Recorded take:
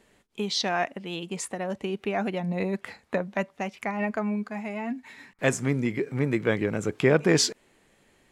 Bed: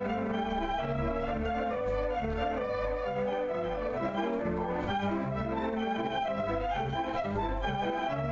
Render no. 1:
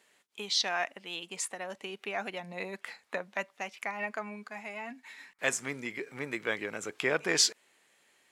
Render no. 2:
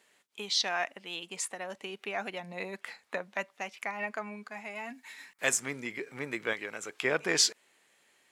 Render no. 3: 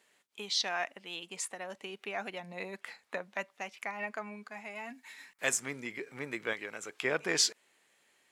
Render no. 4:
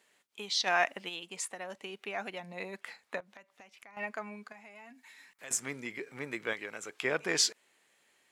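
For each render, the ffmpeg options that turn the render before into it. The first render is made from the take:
-af "highpass=f=1400:p=1"
-filter_complex "[0:a]asettb=1/sr,asplit=3[s0][s1][s2];[s0]atrim=end=4.754[s3];[s1]atrim=start=4.75:end=5.6,asetpts=PTS-STARTPTS,afade=t=in:d=0.004:c=qsin,afade=t=out:st=0.846:d=0.004:c=qsin,highshelf=f=5900:g=8.5[s4];[s2]atrim=start=5.596[s5];[s3][s4]acrossfade=d=0.004:c1=hsin:c2=qsin[s6];[s6][s5]acrossfade=d=0.004:c1=qsin:c2=hsin,asettb=1/sr,asplit=3[s7][s8][s9];[s7]atrim=end=6.534[s10];[s8]atrim=start=6.53:end=7.05,asetpts=PTS-STARTPTS,afade=t=in:d=0.004:c=qsin,afade=t=out:st=0.516:d=0.004:c=qsin,lowshelf=f=430:g=-8.5[s11];[s9]atrim=start=7.046[s12];[s10][s11]acrossfade=d=0.004:c1=hsin:c2=qsin[s13];[s13][s12]acrossfade=d=0.004:c1=qsin:c2=hsin"
-af "volume=0.75"
-filter_complex "[0:a]asplit=3[s0][s1][s2];[s0]afade=t=out:st=0.66:d=0.02[s3];[s1]acontrast=80,afade=t=in:st=0.66:d=0.02,afade=t=out:st=1.08:d=0.02[s4];[s2]afade=t=in:st=1.08:d=0.02[s5];[s3][s4][s5]amix=inputs=3:normalize=0,asettb=1/sr,asplit=3[s6][s7][s8];[s6]atrim=end=3.204[s9];[s7]atrim=start=3.2:end=3.97,asetpts=PTS-STARTPTS,afade=t=in:d=0.004:c=qsin,afade=t=out:st=0.766:d=0.004:c=qsin,acompressor=threshold=0.00224:ratio=4:attack=3.2:release=140:knee=1:detection=peak[s10];[s8]atrim=start=3.966[s11];[s9][s10]acrossfade=d=0.004:c1=hsin:c2=qsin[s12];[s12][s11]acrossfade=d=0.004:c1=qsin:c2=hsin,asettb=1/sr,asplit=3[s13][s14][s15];[s13]atrim=end=4.524[s16];[s14]atrim=start=4.52:end=5.51,asetpts=PTS-STARTPTS,afade=t=in:d=0.004:c=qsin,afade=t=out:st=0.986:d=0.004:c=qsin,acompressor=threshold=0.00178:ratio=2:attack=3.2:release=140:knee=1:detection=peak[s17];[s15]atrim=start=5.506[s18];[s16][s17]acrossfade=d=0.004:c1=hsin:c2=qsin[s19];[s19][s18]acrossfade=d=0.004:c1=qsin:c2=hsin"

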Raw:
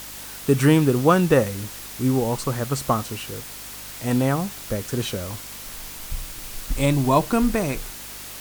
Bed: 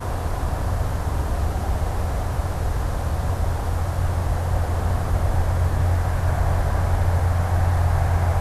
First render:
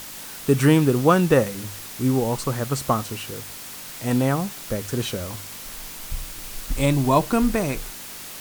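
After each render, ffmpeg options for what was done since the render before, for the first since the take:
-af "bandreject=f=50:t=h:w=4,bandreject=f=100:t=h:w=4"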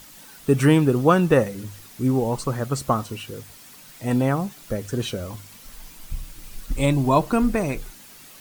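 -af "afftdn=nr=10:nf=-37"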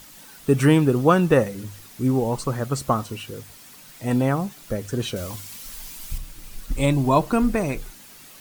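-filter_complex "[0:a]asettb=1/sr,asplit=3[s0][s1][s2];[s0]atrim=end=5.164[s3];[s1]atrim=start=5.16:end=6.18,asetpts=PTS-STARTPTS,afade=t=in:d=0.004:c=qsin,afade=t=out:st=1.016:d=0.004:c=qsin,highshelf=f=2300:g=8[s4];[s2]atrim=start=6.176[s5];[s3][s4]acrossfade=d=0.004:c1=hsin:c2=qsin[s6];[s6][s5]acrossfade=d=0.004:c1=qsin:c2=hsin"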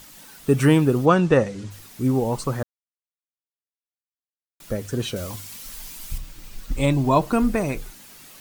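-filter_complex "[0:a]asplit=3[s0][s1][s2];[s0]afade=t=out:st=1.05:d=0.02[s3];[s1]lowpass=f=7700:w=0.5412,lowpass=f=7700:w=1.3066,afade=t=in:st=1.05:d=0.02,afade=t=out:st=1.7:d=0.02[s4];[s2]afade=t=in:st=1.7:d=0.02[s5];[s3][s4][s5]amix=inputs=3:normalize=0,asettb=1/sr,asplit=3[s6][s7][s8];[s6]atrim=end=6.194[s9];[s7]atrim=start=6.19:end=7.22,asetpts=PTS-STARTPTS,afade=t=in:d=0.004:c=qsin,afade=t=out:st=1.026:d=0.004:c=qsin,equalizer=f=11000:w=1.6:g=-6.5[s10];[s8]atrim=start=7.216[s11];[s9][s10]acrossfade=d=0.004:c1=hsin:c2=qsin[s12];[s12][s11]acrossfade=d=0.004:c1=qsin:c2=hsin,asplit=3[s13][s14][s15];[s13]atrim=end=2.63,asetpts=PTS-STARTPTS,afade=t=out:st=2.626:d=0.004:c=hsin[s16];[s14]atrim=start=2.63:end=4.6,asetpts=PTS-STARTPTS,volume=0[s17];[s15]atrim=start=4.6,asetpts=PTS-STARTPTS,afade=t=in:d=0.004:c=hsin[s18];[s16][s17][s18]concat=n=3:v=0:a=1"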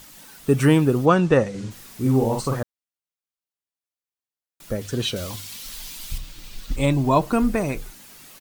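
-filter_complex "[0:a]asplit=3[s0][s1][s2];[s0]afade=t=out:st=1.53:d=0.02[s3];[s1]asplit=2[s4][s5];[s5]adelay=45,volume=0.668[s6];[s4][s6]amix=inputs=2:normalize=0,afade=t=in:st=1.53:d=0.02,afade=t=out:st=2.59:d=0.02[s7];[s2]afade=t=in:st=2.59:d=0.02[s8];[s3][s7][s8]amix=inputs=3:normalize=0,asettb=1/sr,asplit=3[s9][s10][s11];[s9]atrim=end=4.814[s12];[s10]atrim=start=4.81:end=6.76,asetpts=PTS-STARTPTS,afade=t=in:d=0.004:c=qsin,afade=t=out:st=1.946:d=0.004:c=qsin,equalizer=f=3700:t=o:w=1.2:g=7[s13];[s11]atrim=start=6.756[s14];[s12][s13]acrossfade=d=0.004:c1=hsin:c2=qsin[s15];[s15][s14]acrossfade=d=0.004:c1=qsin:c2=hsin"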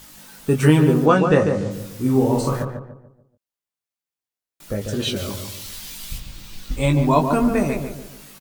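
-filter_complex "[0:a]asplit=2[s0][s1];[s1]adelay=20,volume=0.562[s2];[s0][s2]amix=inputs=2:normalize=0,asplit=2[s3][s4];[s4]adelay=145,lowpass=f=1300:p=1,volume=0.562,asplit=2[s5][s6];[s6]adelay=145,lowpass=f=1300:p=1,volume=0.41,asplit=2[s7][s8];[s8]adelay=145,lowpass=f=1300:p=1,volume=0.41,asplit=2[s9][s10];[s10]adelay=145,lowpass=f=1300:p=1,volume=0.41,asplit=2[s11][s12];[s12]adelay=145,lowpass=f=1300:p=1,volume=0.41[s13];[s5][s7][s9][s11][s13]amix=inputs=5:normalize=0[s14];[s3][s14]amix=inputs=2:normalize=0"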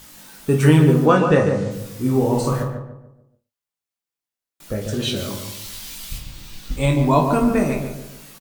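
-filter_complex "[0:a]asplit=2[s0][s1];[s1]adelay=37,volume=0.224[s2];[s0][s2]amix=inputs=2:normalize=0,aecho=1:1:51|117:0.299|0.112"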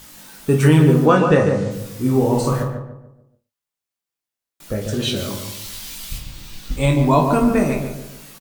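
-af "volume=1.19,alimiter=limit=0.708:level=0:latency=1"

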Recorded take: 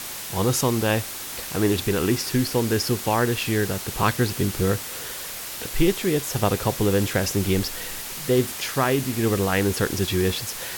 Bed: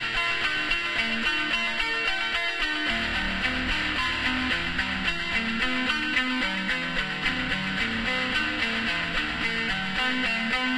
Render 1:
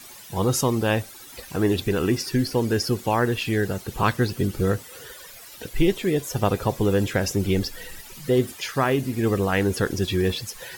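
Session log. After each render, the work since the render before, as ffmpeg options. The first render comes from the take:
-af "afftdn=nr=14:nf=-34"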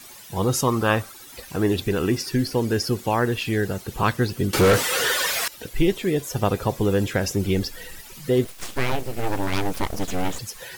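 -filter_complex "[0:a]asettb=1/sr,asplit=3[s0][s1][s2];[s0]atrim=end=0.674[s3];[s1]atrim=start=0.67:end=1.12,asetpts=PTS-STARTPTS,afade=t=in:d=0.004:c=qsin,afade=t=out:st=0.446:d=0.004:c=qsin,equalizer=f=1200:t=o:w=0.57:g=13[s4];[s2]atrim=start=1.116[s5];[s3][s4]acrossfade=d=0.004:c1=hsin:c2=qsin[s6];[s6][s5]acrossfade=d=0.004:c1=qsin:c2=hsin,asettb=1/sr,asplit=3[s7][s8][s9];[s7]atrim=end=4.534[s10];[s8]atrim=start=4.53:end=5.48,asetpts=PTS-STARTPTS,afade=t=in:d=0.004:c=qsin,afade=t=out:st=0.946:d=0.004:c=qsin,asplit=2[s11][s12];[s12]highpass=f=720:p=1,volume=39.8,asoftclip=type=tanh:threshold=0.376[s13];[s11][s13]amix=inputs=2:normalize=0,lowpass=f=4400:p=1,volume=0.501[s14];[s9]atrim=start=5.476[s15];[s10][s14]acrossfade=d=0.004:c1=hsin:c2=qsin[s16];[s16][s15]acrossfade=d=0.004:c1=qsin:c2=hsin,asplit=3[s17][s18][s19];[s17]afade=t=out:st=8.44:d=0.02[s20];[s18]aeval=exprs='abs(val(0))':c=same,afade=t=in:st=8.44:d=0.02,afade=t=out:st=10.38:d=0.02[s21];[s19]afade=t=in:st=10.38:d=0.02[s22];[s20][s21][s22]amix=inputs=3:normalize=0"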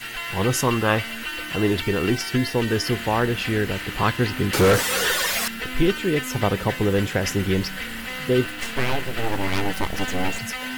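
-filter_complex "[1:a]volume=0.531[s0];[0:a][s0]amix=inputs=2:normalize=0"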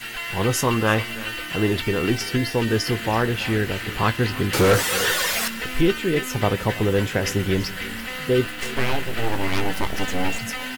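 -filter_complex "[0:a]asplit=2[s0][s1];[s1]adelay=18,volume=0.251[s2];[s0][s2]amix=inputs=2:normalize=0,aecho=1:1:332:0.126"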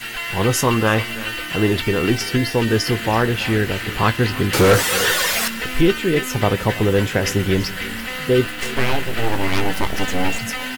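-af "volume=1.5,alimiter=limit=0.708:level=0:latency=1"

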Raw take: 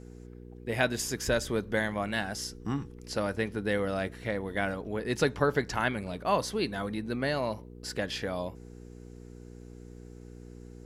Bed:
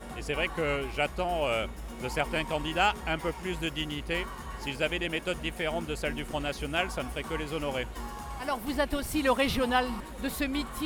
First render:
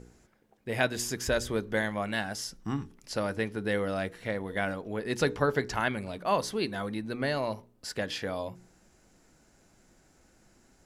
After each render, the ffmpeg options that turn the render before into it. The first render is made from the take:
-af "bandreject=f=60:t=h:w=4,bandreject=f=120:t=h:w=4,bandreject=f=180:t=h:w=4,bandreject=f=240:t=h:w=4,bandreject=f=300:t=h:w=4,bandreject=f=360:t=h:w=4,bandreject=f=420:t=h:w=4,bandreject=f=480:t=h:w=4"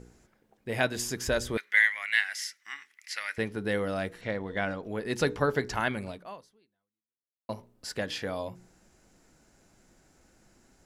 -filter_complex "[0:a]asettb=1/sr,asplit=3[s0][s1][s2];[s0]atrim=end=1.574[s3];[s1]atrim=start=1.57:end=3.38,asetpts=PTS-STARTPTS,afade=t=in:d=0.004:c=qsin,afade=t=out:st=1.806:d=0.004:c=qsin,highpass=f=2000:t=q:w=7.2[s4];[s2]atrim=start=3.376[s5];[s3][s4]acrossfade=d=0.004:c1=hsin:c2=qsin[s6];[s6][s5]acrossfade=d=0.004:c1=qsin:c2=hsin,asettb=1/sr,asplit=3[s7][s8][s9];[s7]atrim=end=4.214[s10];[s8]atrim=start=4.21:end=4.83,asetpts=PTS-STARTPTS,afade=t=in:d=0.004:c=qsin,afade=t=out:st=0.616:d=0.004:c=qsin,lowpass=f=7000:w=0.5412,lowpass=f=7000:w=1.3066[s11];[s9]atrim=start=4.826[s12];[s10][s11]acrossfade=d=0.004:c1=hsin:c2=qsin[s13];[s13][s12]acrossfade=d=0.004:c1=qsin:c2=hsin,asplit=2[s14][s15];[s14]atrim=end=7.49,asetpts=PTS-STARTPTS,afade=t=out:st=6.09:d=1.4:c=exp[s16];[s15]atrim=start=7.49,asetpts=PTS-STARTPTS,afade=t=in:d=0.004:c=hsin[s17];[s16][s17]concat=n=2:v=0:a=1"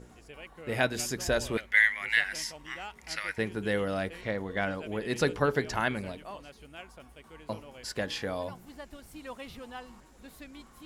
-filter_complex "[1:a]volume=0.141[s0];[0:a][s0]amix=inputs=2:normalize=0"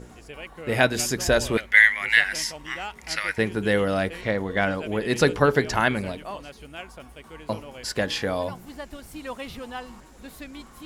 -af "volume=2.37"

